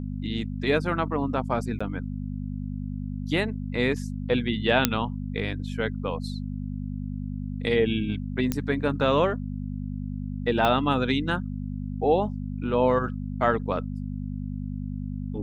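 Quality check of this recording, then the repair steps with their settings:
hum 50 Hz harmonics 5 -32 dBFS
1.79–1.80 s: dropout 15 ms
4.85 s: pop -1 dBFS
8.52 s: pop -11 dBFS
10.65 s: pop -11 dBFS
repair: de-click; de-hum 50 Hz, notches 5; interpolate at 1.79 s, 15 ms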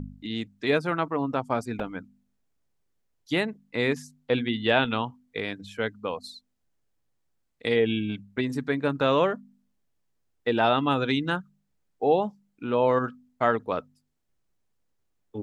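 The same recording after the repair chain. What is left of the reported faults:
10.65 s: pop

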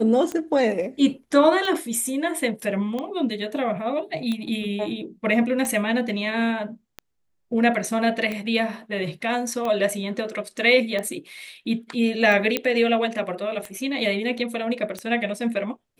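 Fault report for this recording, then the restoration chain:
tick 45 rpm -16 dBFS
12.57 s: pop -7 dBFS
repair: de-click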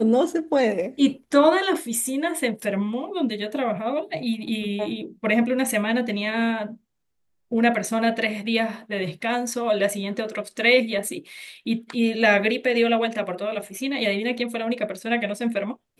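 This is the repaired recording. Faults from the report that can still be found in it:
nothing left

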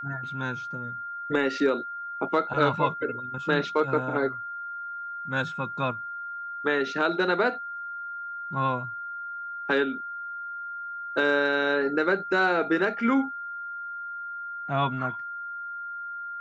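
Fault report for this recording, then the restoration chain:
whine 1.4 kHz -33 dBFS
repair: band-stop 1.4 kHz, Q 30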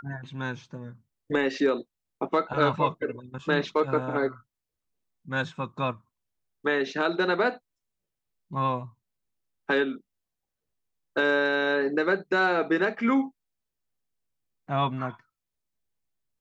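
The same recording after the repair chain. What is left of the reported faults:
nothing left

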